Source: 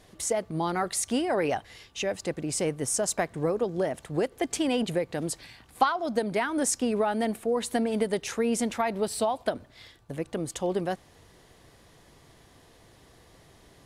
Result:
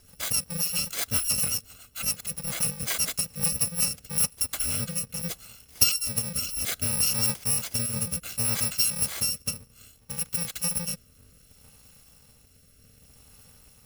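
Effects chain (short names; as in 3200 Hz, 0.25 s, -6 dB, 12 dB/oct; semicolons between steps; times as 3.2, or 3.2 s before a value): FFT order left unsorted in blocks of 128 samples; rotary speaker horn 7.5 Hz, later 0.65 Hz, at 3.3; gain +3.5 dB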